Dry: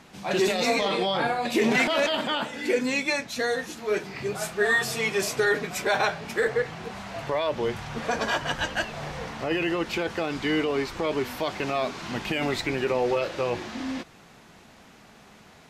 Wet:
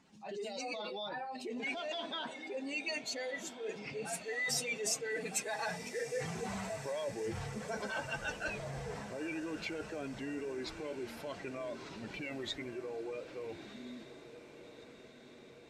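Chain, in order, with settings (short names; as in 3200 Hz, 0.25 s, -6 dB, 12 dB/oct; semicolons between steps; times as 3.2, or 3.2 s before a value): spectral contrast raised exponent 1.7; Doppler pass-by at 6.48, 24 m/s, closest 14 m; reverse; compressor, threshold -43 dBFS, peak gain reduction 19 dB; reverse; bell 7700 Hz +13.5 dB 2 oct; diffused feedback echo 1.334 s, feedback 64%, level -13 dB; gain +5 dB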